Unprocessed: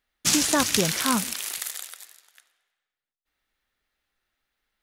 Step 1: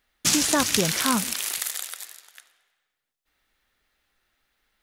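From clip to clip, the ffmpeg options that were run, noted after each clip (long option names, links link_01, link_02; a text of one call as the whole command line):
ffmpeg -i in.wav -af "acompressor=threshold=-37dB:ratio=1.5,volume=7dB" out.wav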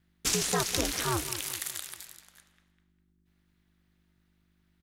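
ffmpeg -i in.wav -filter_complex "[0:a]asplit=2[link_01][link_02];[link_02]adelay=201,lowpass=frequency=3000:poles=1,volume=-13dB,asplit=2[link_03][link_04];[link_04]adelay=201,lowpass=frequency=3000:poles=1,volume=0.46,asplit=2[link_05][link_06];[link_06]adelay=201,lowpass=frequency=3000:poles=1,volume=0.46,asplit=2[link_07][link_08];[link_08]adelay=201,lowpass=frequency=3000:poles=1,volume=0.46,asplit=2[link_09][link_10];[link_10]adelay=201,lowpass=frequency=3000:poles=1,volume=0.46[link_11];[link_01][link_03][link_05][link_07][link_09][link_11]amix=inputs=6:normalize=0,aeval=exprs='val(0)+0.000794*(sin(2*PI*50*n/s)+sin(2*PI*2*50*n/s)/2+sin(2*PI*3*50*n/s)/3+sin(2*PI*4*50*n/s)/4+sin(2*PI*5*50*n/s)/5)':channel_layout=same,aeval=exprs='val(0)*sin(2*PI*120*n/s)':channel_layout=same,volume=-4dB" out.wav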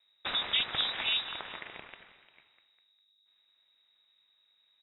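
ffmpeg -i in.wav -af "lowpass=frequency=3300:width_type=q:width=0.5098,lowpass=frequency=3300:width_type=q:width=0.6013,lowpass=frequency=3300:width_type=q:width=0.9,lowpass=frequency=3300:width_type=q:width=2.563,afreqshift=-3900" out.wav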